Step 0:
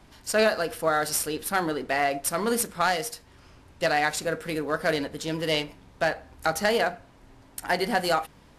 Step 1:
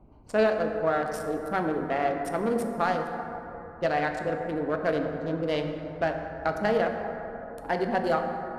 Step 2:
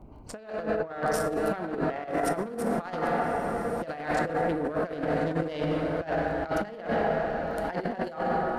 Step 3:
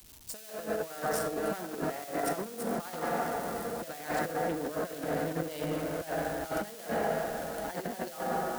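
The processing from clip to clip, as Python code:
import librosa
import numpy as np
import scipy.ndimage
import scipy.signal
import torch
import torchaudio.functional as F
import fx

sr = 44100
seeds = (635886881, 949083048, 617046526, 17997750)

y1 = fx.wiener(x, sr, points=25)
y1 = fx.lowpass(y1, sr, hz=1300.0, slope=6)
y1 = fx.rev_plate(y1, sr, seeds[0], rt60_s=3.6, hf_ratio=0.35, predelay_ms=0, drr_db=4.0)
y2 = fx.dmg_crackle(y1, sr, seeds[1], per_s=19.0, level_db=-55.0)
y2 = fx.echo_diffused(y2, sr, ms=1225, feedback_pct=40, wet_db=-11.5)
y2 = fx.over_compress(y2, sr, threshold_db=-31.0, ratio=-0.5)
y2 = y2 * librosa.db_to_amplitude(2.5)
y3 = y2 + 0.5 * 10.0 ** (-28.5 / 20.0) * np.diff(np.sign(y2), prepend=np.sign(y2[:1]))
y3 = fx.low_shelf(y3, sr, hz=81.0, db=-7.0)
y3 = fx.band_widen(y3, sr, depth_pct=40)
y3 = y3 * librosa.db_to_amplitude(-4.5)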